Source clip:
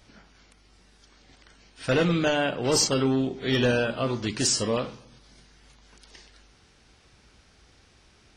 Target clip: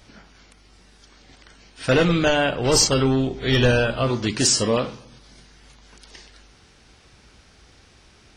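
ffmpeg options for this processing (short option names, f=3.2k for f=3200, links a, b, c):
-filter_complex "[0:a]asplit=3[a][b][c];[a]afade=t=out:st=1.96:d=0.02[d];[b]asubboost=boost=5:cutoff=93,afade=t=in:st=1.96:d=0.02,afade=t=out:st=4.09:d=0.02[e];[c]afade=t=in:st=4.09:d=0.02[f];[d][e][f]amix=inputs=3:normalize=0,volume=5.5dB"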